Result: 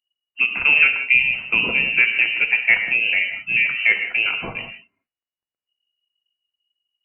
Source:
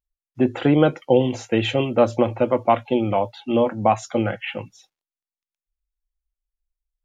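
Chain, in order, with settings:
voice inversion scrambler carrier 2,900 Hz
reverb whose tail is shaped and stops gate 210 ms flat, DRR 5.5 dB

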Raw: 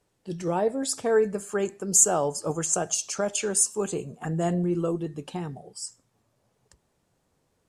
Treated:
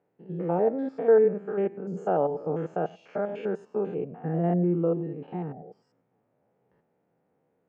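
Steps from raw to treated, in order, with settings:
spectrum averaged block by block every 100 ms
loudspeaker in its box 160–2,100 Hz, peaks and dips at 170 Hz +4 dB, 270 Hz +3 dB, 470 Hz +6 dB, 780 Hz +4 dB, 1,100 Hz −6 dB, 1,700 Hz −3 dB

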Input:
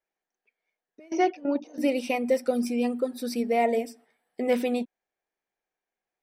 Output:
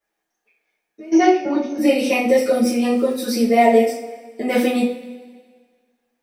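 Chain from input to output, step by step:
0:02.51–0:03.22: surface crackle 45 per second −41 dBFS
coupled-rooms reverb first 0.38 s, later 1.7 s, from −18 dB, DRR −9 dB
level +1.5 dB

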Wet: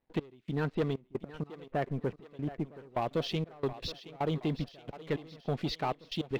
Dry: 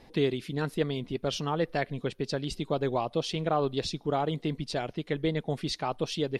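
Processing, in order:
Bessel low-pass filter 2,400 Hz, order 8, from 0:00.93 1,300 Hz, from 0:03.00 3,400 Hz
leveller curve on the samples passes 2
gate pattern ".x...xxxxx..x" 157 BPM −24 dB
feedback echo with a high-pass in the loop 722 ms, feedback 56%, high-pass 370 Hz, level −13.5 dB
level −6.5 dB

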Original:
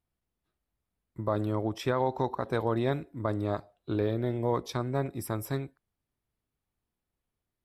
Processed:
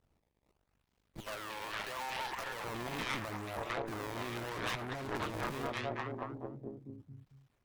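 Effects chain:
spectral magnitudes quantised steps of 15 dB
sample-and-hold swept by an LFO 18×, swing 160% 0.78 Hz
0:01.20–0:02.64: four-pole ladder high-pass 510 Hz, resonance 20%
0:04.49–0:05.34: high-shelf EQ 6,600 Hz −10.5 dB
half-wave rectification
echo through a band-pass that steps 225 ms, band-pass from 2,800 Hz, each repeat −0.7 octaves, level −8.5 dB
brickwall limiter −33.5 dBFS, peak gain reduction 18 dB
dynamic equaliser 1,200 Hz, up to +3 dB, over −57 dBFS, Q 0.82
tube saturation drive 46 dB, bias 0.6
level +17.5 dB

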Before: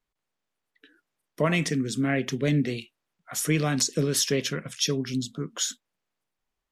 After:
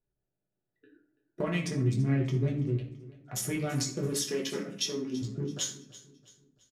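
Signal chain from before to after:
adaptive Wiener filter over 41 samples
0:01.81–0:02.77: low-shelf EQ 380 Hz +10.5 dB
0:04.07–0:05.22: Butterworth high-pass 180 Hz 48 dB per octave
downward compressor 10 to 1, threshold −32 dBFS, peak gain reduction 20 dB
repeating echo 333 ms, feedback 43%, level −18 dB
convolution reverb RT60 0.55 s, pre-delay 4 ms, DRR −2.5 dB

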